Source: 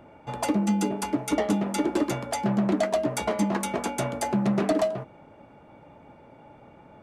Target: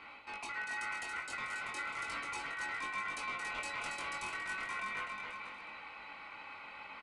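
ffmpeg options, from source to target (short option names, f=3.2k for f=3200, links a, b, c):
-filter_complex "[0:a]highpass=110,lowshelf=f=340:g=-6.5,bandreject=f=3.8k:w=7.4,areverse,acompressor=threshold=-39dB:ratio=6,areverse,asoftclip=type=tanh:threshold=-38.5dB,aeval=exprs='val(0)*sin(2*PI*1700*n/s)':c=same,flanger=delay=19.5:depth=2.6:speed=0.37,asplit=2[a][b];[b]aecho=0:1:280|490|647.5|765.6|854.2:0.631|0.398|0.251|0.158|0.1[c];[a][c]amix=inputs=2:normalize=0,aresample=22050,aresample=44100,volume=7.5dB"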